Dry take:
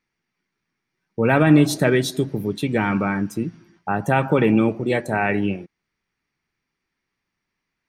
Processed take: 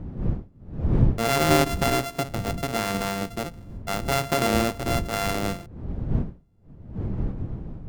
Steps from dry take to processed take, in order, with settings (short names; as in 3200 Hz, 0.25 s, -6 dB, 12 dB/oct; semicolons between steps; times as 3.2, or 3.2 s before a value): sample sorter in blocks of 64 samples; wind noise 140 Hz -23 dBFS; gain -6 dB